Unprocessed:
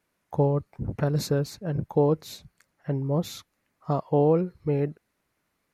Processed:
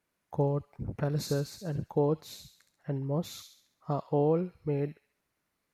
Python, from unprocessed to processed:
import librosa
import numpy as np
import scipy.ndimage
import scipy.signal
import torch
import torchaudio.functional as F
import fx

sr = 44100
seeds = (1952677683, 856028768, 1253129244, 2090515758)

y = fx.echo_wet_highpass(x, sr, ms=68, feedback_pct=47, hz=2800.0, wet_db=-4.0)
y = F.gain(torch.from_numpy(y), -5.5).numpy()